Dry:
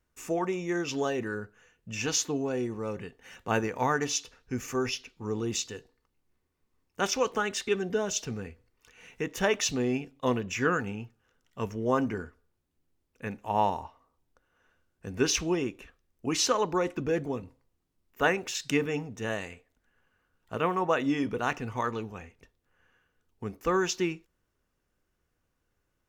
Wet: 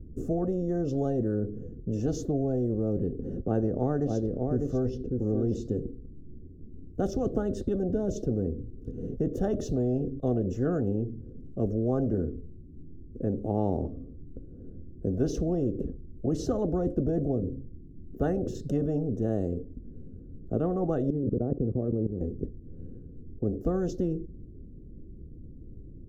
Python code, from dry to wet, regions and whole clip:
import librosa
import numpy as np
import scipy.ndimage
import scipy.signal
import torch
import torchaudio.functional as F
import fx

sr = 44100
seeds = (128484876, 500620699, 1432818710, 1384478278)

y = fx.chain(x, sr, fx.lowpass(hz=3700.0, slope=6),
    fx.echo_single(ms=598, db=-9.0), at=(3.21, 5.62))
y = fx.chain(y, sr, fx.low_shelf(hz=180.0, db=9.5),
    fx.level_steps(step_db=17),
    fx.bandpass_q(hz=230.0, q=0.53), at=(21.1, 22.21))
y = scipy.signal.sosfilt(scipy.signal.cheby2(4, 50, 890.0, 'lowpass', fs=sr, output='sos'), y)
y = fx.spectral_comp(y, sr, ratio=4.0)
y = F.gain(torch.from_numpy(y), 6.0).numpy()